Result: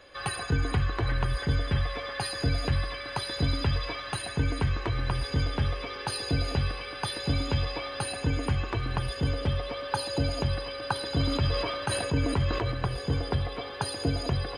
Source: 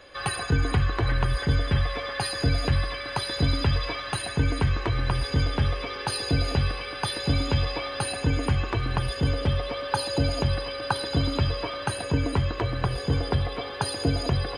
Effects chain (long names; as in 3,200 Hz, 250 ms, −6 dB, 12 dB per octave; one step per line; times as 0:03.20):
0:10.93–0:12.72: level that may fall only so fast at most 30 dB per second
level −3.5 dB